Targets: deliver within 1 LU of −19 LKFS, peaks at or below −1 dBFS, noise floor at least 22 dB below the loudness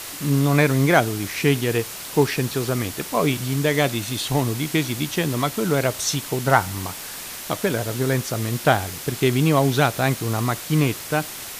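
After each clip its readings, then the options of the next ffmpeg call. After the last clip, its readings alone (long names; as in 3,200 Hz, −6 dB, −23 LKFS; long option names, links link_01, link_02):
background noise floor −35 dBFS; target noise floor −44 dBFS; integrated loudness −22.0 LKFS; sample peak −2.0 dBFS; target loudness −19.0 LKFS
→ -af "afftdn=noise_reduction=9:noise_floor=-35"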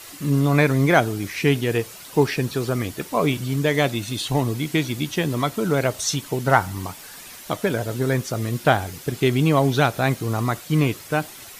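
background noise floor −41 dBFS; target noise floor −44 dBFS
→ -af "afftdn=noise_reduction=6:noise_floor=-41"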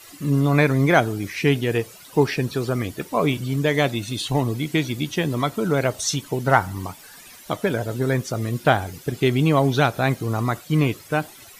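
background noise floor −45 dBFS; integrated loudness −22.0 LKFS; sample peak −2.0 dBFS; target loudness −19.0 LKFS
→ -af "volume=3dB,alimiter=limit=-1dB:level=0:latency=1"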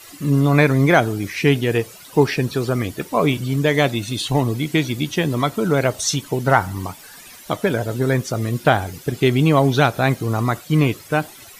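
integrated loudness −19.0 LKFS; sample peak −1.0 dBFS; background noise floor −42 dBFS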